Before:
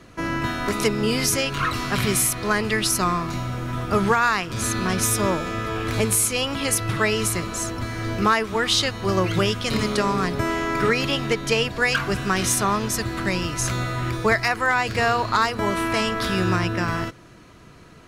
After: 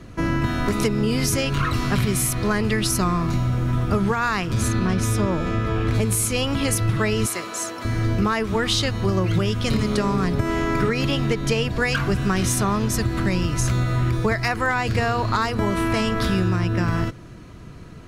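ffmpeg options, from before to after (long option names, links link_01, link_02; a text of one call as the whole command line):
ffmpeg -i in.wav -filter_complex "[0:a]asettb=1/sr,asplit=3[link_01][link_02][link_03];[link_01]atrim=end=4.684[link_04];[link_02]atrim=start=4.68:end=5.95,asetpts=PTS-STARTPTS,afade=type=in:duration=0.004:curve=qsin,afade=type=out:start_time=1.266:duration=0.004:curve=qsin,highshelf=frequency=6900:gain=-10[link_05];[link_03]atrim=start=5.946[link_06];[link_04][link_05]acrossfade=duration=0.004:curve1=hsin:curve2=qsin[link_07];[link_07][link_06]acrossfade=duration=0.004:curve1=qsin:curve2=hsin,asettb=1/sr,asplit=3[link_08][link_09][link_10];[link_08]atrim=end=7.264[link_11];[link_09]atrim=start=7.26:end=7.85,asetpts=PTS-STARTPTS,afade=type=in:duration=0.004:curve=qsin,afade=type=out:start_time=0.586:duration=0.004:curve=qsin,highpass=500[link_12];[link_10]atrim=start=7.846[link_13];[link_11][link_12]acrossfade=duration=0.004:curve1=hsin:curve2=qsin[link_14];[link_14][link_13]acrossfade=duration=0.004:curve1=qsin:curve2=hsin,lowshelf=frequency=280:gain=11,acompressor=threshold=-17dB:ratio=6" out.wav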